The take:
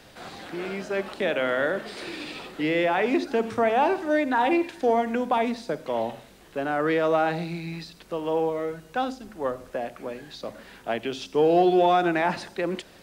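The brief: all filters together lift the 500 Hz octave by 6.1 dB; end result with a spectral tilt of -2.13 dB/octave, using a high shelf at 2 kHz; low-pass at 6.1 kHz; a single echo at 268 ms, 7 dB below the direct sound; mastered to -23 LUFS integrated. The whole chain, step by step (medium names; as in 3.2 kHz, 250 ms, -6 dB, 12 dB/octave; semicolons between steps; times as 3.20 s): low-pass 6.1 kHz; peaking EQ 500 Hz +8 dB; treble shelf 2 kHz -7 dB; delay 268 ms -7 dB; trim -2.5 dB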